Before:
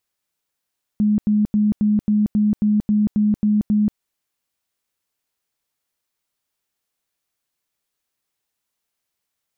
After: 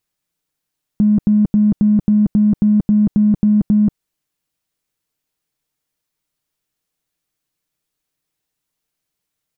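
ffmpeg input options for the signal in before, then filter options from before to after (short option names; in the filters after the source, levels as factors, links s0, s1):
-f lavfi -i "aevalsrc='0.211*sin(2*PI*210*mod(t,0.27))*lt(mod(t,0.27),38/210)':d=2.97:s=44100"
-filter_complex "[0:a]aecho=1:1:6.5:0.39,asplit=2[s0][s1];[s1]adynamicsmooth=sensitivity=2:basefreq=520,volume=1.12[s2];[s0][s2]amix=inputs=2:normalize=0"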